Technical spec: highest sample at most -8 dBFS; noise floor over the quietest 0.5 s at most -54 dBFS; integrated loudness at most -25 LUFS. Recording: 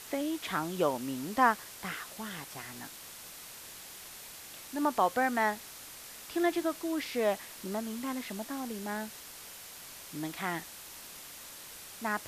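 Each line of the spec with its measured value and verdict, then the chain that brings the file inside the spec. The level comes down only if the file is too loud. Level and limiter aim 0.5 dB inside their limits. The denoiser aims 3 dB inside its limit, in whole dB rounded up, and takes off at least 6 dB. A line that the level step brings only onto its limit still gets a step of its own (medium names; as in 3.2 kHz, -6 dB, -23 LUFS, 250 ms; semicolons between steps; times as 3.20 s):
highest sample -11.5 dBFS: pass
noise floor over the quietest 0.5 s -48 dBFS: fail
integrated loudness -34.5 LUFS: pass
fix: noise reduction 9 dB, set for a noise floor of -48 dBFS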